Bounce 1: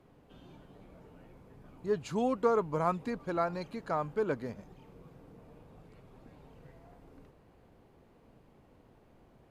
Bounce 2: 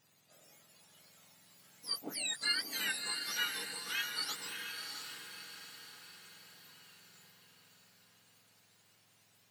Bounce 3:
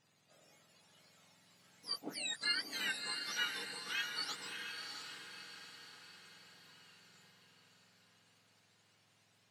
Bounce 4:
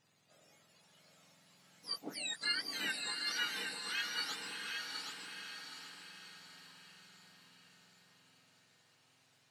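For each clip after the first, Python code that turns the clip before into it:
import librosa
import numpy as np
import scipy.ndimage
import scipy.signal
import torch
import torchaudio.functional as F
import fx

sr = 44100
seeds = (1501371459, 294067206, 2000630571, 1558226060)

y1 = fx.octave_mirror(x, sr, pivot_hz=1400.0)
y1 = fx.echo_diffused(y1, sr, ms=654, feedback_pct=50, wet_db=-5.0)
y1 = y1 * librosa.db_to_amplitude(-1.5)
y2 = fx.air_absorb(y1, sr, metres=52.0)
y2 = y2 * librosa.db_to_amplitude(-1.0)
y3 = fx.echo_feedback(y2, sr, ms=771, feedback_pct=32, wet_db=-5.0)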